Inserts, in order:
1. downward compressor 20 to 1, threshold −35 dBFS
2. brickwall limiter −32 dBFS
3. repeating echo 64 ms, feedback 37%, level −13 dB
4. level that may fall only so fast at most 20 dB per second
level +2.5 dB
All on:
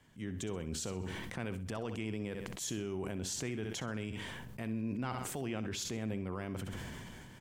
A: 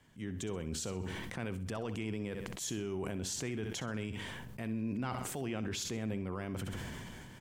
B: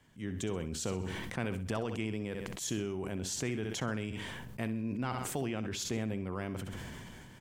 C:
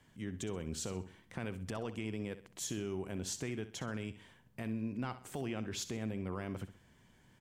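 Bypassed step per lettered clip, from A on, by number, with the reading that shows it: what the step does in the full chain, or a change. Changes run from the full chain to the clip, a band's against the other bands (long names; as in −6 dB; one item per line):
1, average gain reduction 6.0 dB
2, change in integrated loudness +2.5 LU
4, change in crest factor −3.5 dB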